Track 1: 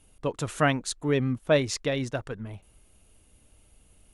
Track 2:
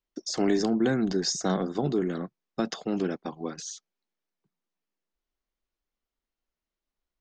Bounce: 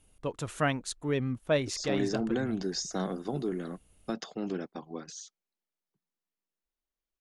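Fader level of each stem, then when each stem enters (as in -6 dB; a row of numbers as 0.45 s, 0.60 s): -5.0 dB, -6.0 dB; 0.00 s, 1.50 s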